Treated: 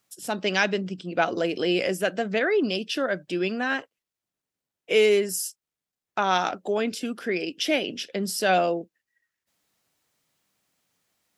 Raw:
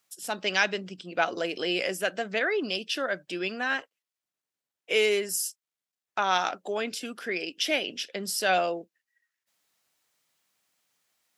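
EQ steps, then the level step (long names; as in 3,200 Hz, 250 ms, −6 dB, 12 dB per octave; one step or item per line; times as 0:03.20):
low-shelf EQ 450 Hz +11 dB
0.0 dB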